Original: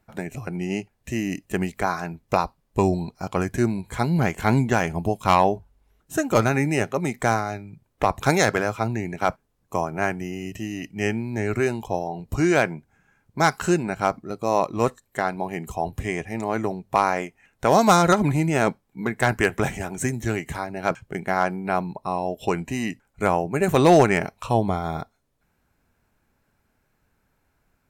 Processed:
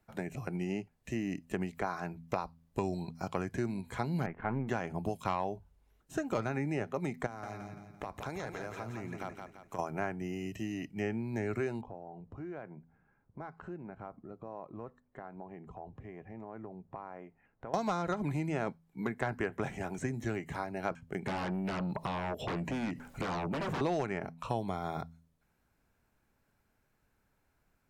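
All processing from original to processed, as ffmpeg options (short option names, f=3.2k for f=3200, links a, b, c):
-filter_complex "[0:a]asettb=1/sr,asplit=3[a][b][c];[a]atrim=end=4.264[d];[b]atrim=start=4.26:end=4.68,asetpts=PTS-STARTPTS,afade=t=in:d=0.004:c=qsin,afade=t=out:st=0.416:d=0.004:c=qsin,aeval=exprs='if(lt(val(0),0),0.251*val(0),val(0))':c=same,lowpass=f=2k:w=0.5412,lowpass=f=2k:w=1.3066[e];[c]atrim=start=4.676[f];[d][e]acrossfade=d=0.004:c1=hsin:c2=qsin[g];[g][f]acrossfade=d=0.004:c1=qsin:c2=hsin,asettb=1/sr,asplit=3[h][i][j];[h]atrim=end=7.264[k];[i]atrim=start=7.26:end=9.79,asetpts=PTS-STARTPTS,afade=t=in:d=0.004:c=qsin,afade=t=out:st=2.526:d=0.004:c=qsin,acompressor=threshold=-32dB:ratio=4:attack=3.2:release=140:knee=1:detection=peak,aecho=1:1:170|340|510|680|850:0.501|0.216|0.0927|0.0398|0.0171,atrim=end_sample=111573[l];[j]atrim=start=9.786[m];[k][l]acrossfade=d=0.004:c1=hsin:c2=qsin[n];[n][m]acrossfade=d=0.004:c1=qsin:c2=hsin,asettb=1/sr,asplit=3[o][p][q];[o]atrim=end=11.814[r];[p]atrim=start=11.81:end=17.74,asetpts=PTS-STARTPTS,afade=t=in:d=0.004:c=qsin,afade=t=out:st=5.926:d=0.004:c=qsin,acompressor=threshold=-39dB:ratio=3:attack=3.2:release=140:knee=1:detection=peak,lowpass=1.3k[s];[q]atrim=start=17.736[t];[r][s]acrossfade=d=0.004:c1=hsin:c2=qsin[u];[u][t]acrossfade=d=0.004:c1=qsin:c2=hsin,asettb=1/sr,asplit=3[v][w][x];[v]atrim=end=21.264[y];[w]atrim=start=21.26:end=23.81,asetpts=PTS-STARTPTS,afade=t=in:d=0.004:c=qsin,afade=t=out:st=2.546:d=0.004:c=qsin,aeval=exprs='0.447*sin(PI/2*7.94*val(0)/0.447)':c=same,acompressor=threshold=-27dB:ratio=5:attack=3.2:release=140:knee=1:detection=peak[z];[x]atrim=start=23.806[aa];[y][z]acrossfade=d=0.004:c1=hsin:c2=qsin[ab];[ab][aa]acrossfade=d=0.004:c1=qsin:c2=hsin,acrossover=split=6300[ac][ad];[ad]acompressor=threshold=-52dB:ratio=4:attack=1:release=60[ae];[ac][ae]amix=inputs=2:normalize=0,bandreject=f=82.51:t=h:w=4,bandreject=f=165.02:t=h:w=4,bandreject=f=247.53:t=h:w=4,acrossover=split=94|1700[af][ag][ah];[af]acompressor=threshold=-49dB:ratio=4[ai];[ag]acompressor=threshold=-25dB:ratio=4[aj];[ah]acompressor=threshold=-43dB:ratio=4[ak];[ai][aj][ak]amix=inputs=3:normalize=0,volume=-6dB"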